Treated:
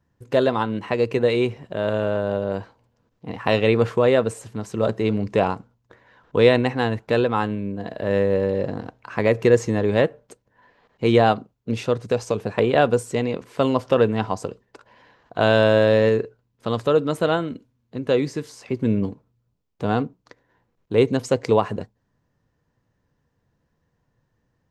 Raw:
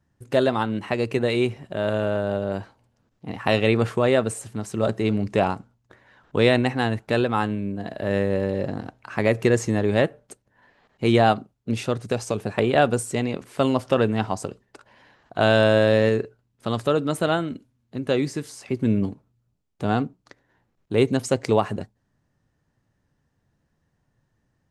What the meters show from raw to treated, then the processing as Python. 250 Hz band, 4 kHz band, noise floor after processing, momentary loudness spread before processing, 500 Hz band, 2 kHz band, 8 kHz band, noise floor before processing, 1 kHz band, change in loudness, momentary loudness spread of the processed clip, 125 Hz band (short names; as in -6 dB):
0.0 dB, -0.5 dB, -72 dBFS, 12 LU, +3.0 dB, 0.0 dB, -4.0 dB, -72 dBFS, +1.0 dB, +1.5 dB, 14 LU, 0.0 dB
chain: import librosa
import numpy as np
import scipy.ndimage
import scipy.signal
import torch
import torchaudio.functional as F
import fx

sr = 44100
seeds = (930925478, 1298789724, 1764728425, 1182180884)

y = fx.peak_eq(x, sr, hz=9700.0, db=-9.0, octaves=0.56)
y = fx.small_body(y, sr, hz=(480.0, 1000.0), ring_ms=45, db=7)